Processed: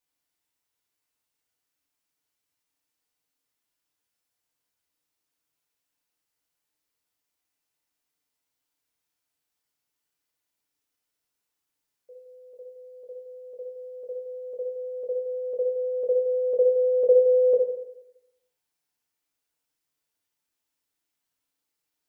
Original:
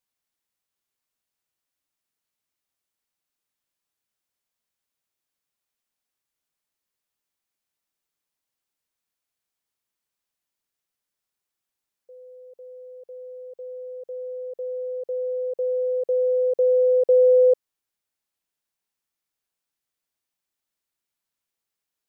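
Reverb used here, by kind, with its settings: FDN reverb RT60 0.88 s, low-frequency decay 0.9×, high-frequency decay 1×, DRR -2 dB; gain -2 dB

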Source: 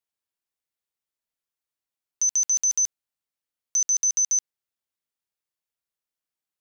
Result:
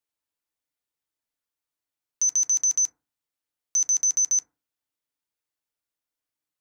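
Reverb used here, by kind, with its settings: FDN reverb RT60 0.34 s, low-frequency decay 1.2×, high-frequency decay 0.3×, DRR 6 dB

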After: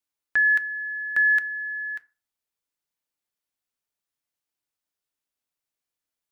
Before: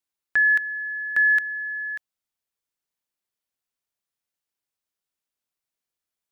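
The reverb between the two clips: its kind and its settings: FDN reverb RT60 0.34 s, low-frequency decay 1×, high-frequency decay 0.55×, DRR 11.5 dB; gain -1 dB

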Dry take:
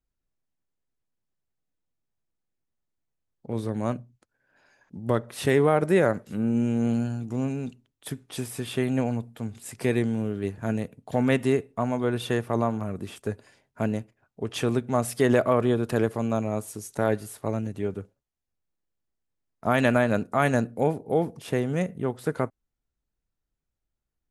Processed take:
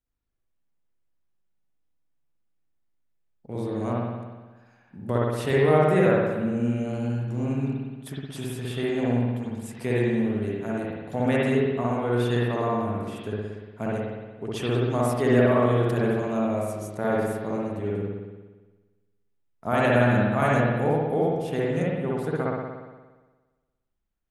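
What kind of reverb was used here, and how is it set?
spring tank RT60 1.3 s, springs 58 ms, chirp 40 ms, DRR -5.5 dB; gain -5 dB

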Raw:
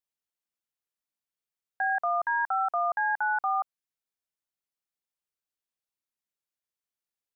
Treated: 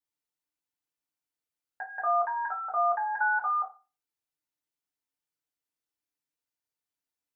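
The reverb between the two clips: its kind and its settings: FDN reverb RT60 0.31 s, low-frequency decay 1.2×, high-frequency decay 0.8×, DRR -4.5 dB; gain -6 dB

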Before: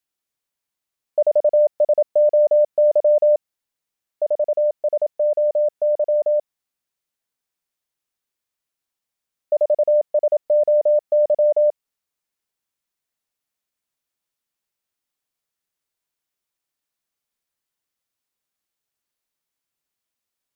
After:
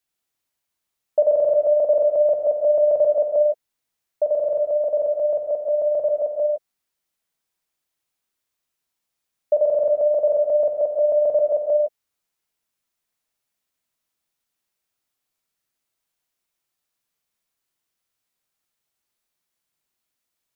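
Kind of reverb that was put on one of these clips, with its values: non-linear reverb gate 0.19 s flat, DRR 1.5 dB; gain +1 dB

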